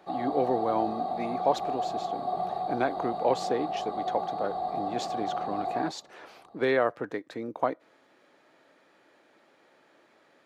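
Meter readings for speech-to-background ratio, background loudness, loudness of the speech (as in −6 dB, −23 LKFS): 1.5 dB, −33.0 LKFS, −31.5 LKFS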